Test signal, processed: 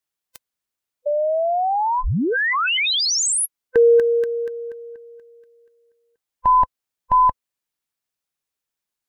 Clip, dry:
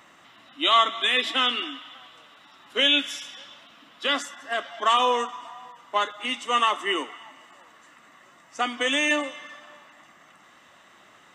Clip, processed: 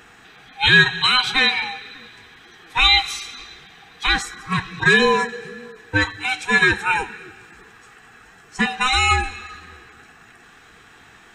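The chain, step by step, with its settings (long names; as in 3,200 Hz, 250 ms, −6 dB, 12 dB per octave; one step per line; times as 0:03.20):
neighbouring bands swapped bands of 500 Hz
level +6 dB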